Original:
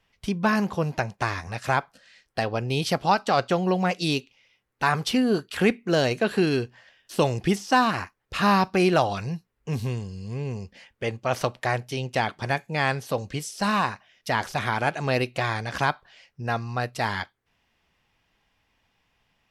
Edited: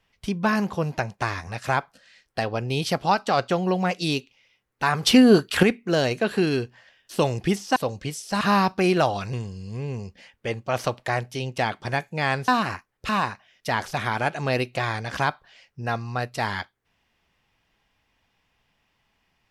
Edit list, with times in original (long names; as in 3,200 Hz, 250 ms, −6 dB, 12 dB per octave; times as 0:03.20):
0:05.03–0:05.63: clip gain +8 dB
0:07.76–0:08.37: swap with 0:13.05–0:13.70
0:09.29–0:09.90: remove